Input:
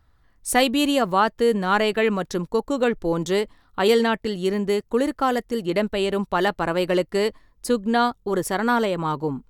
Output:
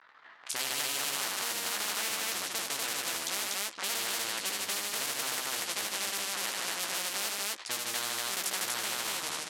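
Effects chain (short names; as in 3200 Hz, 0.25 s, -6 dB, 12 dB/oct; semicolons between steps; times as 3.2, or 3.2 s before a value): cycle switcher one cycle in 2, muted; low-pass opened by the level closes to 1600 Hz, open at -20.5 dBFS; doubler 15 ms -5 dB; loudspeakers at several distances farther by 26 m -8 dB, 52 m -8 dB, 83 m -2 dB; limiter -11 dBFS, peak gain reduction 7.5 dB; BPF 800–7500 Hz; tilt shelf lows -9 dB, about 1500 Hz; spectral compressor 4:1; gain -3.5 dB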